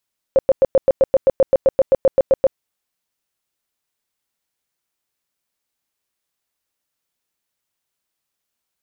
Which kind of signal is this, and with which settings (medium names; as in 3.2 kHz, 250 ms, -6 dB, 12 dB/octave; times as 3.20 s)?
tone bursts 535 Hz, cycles 15, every 0.13 s, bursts 17, -8 dBFS